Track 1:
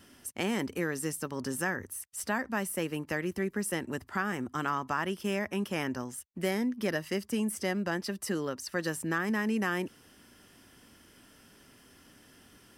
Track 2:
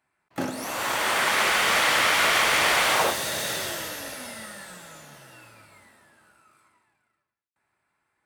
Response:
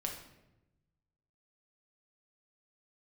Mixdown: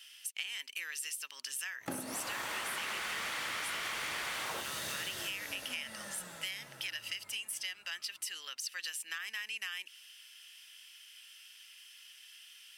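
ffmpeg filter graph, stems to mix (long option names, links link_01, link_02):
-filter_complex "[0:a]highpass=frequency=2800:width_type=q:width=2.8,volume=2.5dB[link_01];[1:a]adynamicequalizer=threshold=0.00891:dfrequency=630:dqfactor=1.1:tfrequency=630:tqfactor=1.1:attack=5:release=100:ratio=0.375:range=3:mode=cutabove:tftype=bell,adelay=1500,volume=-4.5dB[link_02];[link_01][link_02]amix=inputs=2:normalize=0,acompressor=threshold=-36dB:ratio=6"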